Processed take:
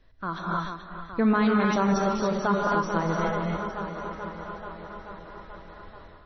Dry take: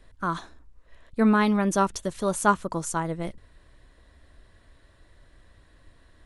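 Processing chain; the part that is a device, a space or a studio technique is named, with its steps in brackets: 1.62–2.79 s: de-hum 151.6 Hz, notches 20; tape echo 434 ms, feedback 75%, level -11.5 dB, low-pass 5.7 kHz; gated-style reverb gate 320 ms rising, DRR 0.5 dB; low-bitrate web radio (level rider gain up to 9 dB; peak limiter -8.5 dBFS, peak gain reduction 7 dB; trim -5.5 dB; MP3 24 kbps 24 kHz)

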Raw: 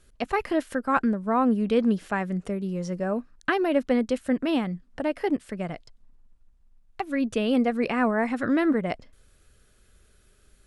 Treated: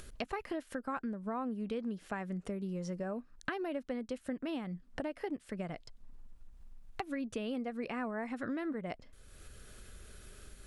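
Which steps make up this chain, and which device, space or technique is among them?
upward and downward compression (upward compressor, threshold -42 dBFS; compression 6:1, threshold -36 dBFS, peak gain reduction 17.5 dB)

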